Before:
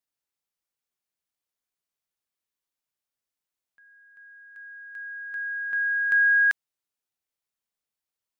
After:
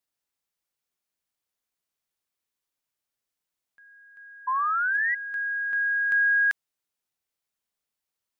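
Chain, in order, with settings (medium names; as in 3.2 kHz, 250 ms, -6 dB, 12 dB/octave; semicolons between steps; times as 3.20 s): in parallel at +2.5 dB: peak limiter -26.5 dBFS, peak gain reduction 10.5 dB; on the sum: painted sound rise, 4.47–5.15 s, 1–2 kHz -20 dBFS; trim -5 dB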